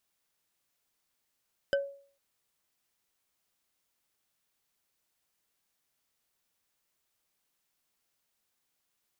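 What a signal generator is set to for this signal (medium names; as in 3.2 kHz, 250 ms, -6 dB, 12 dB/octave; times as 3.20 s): wood hit bar, lowest mode 558 Hz, decay 0.48 s, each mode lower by 5 dB, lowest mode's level -22 dB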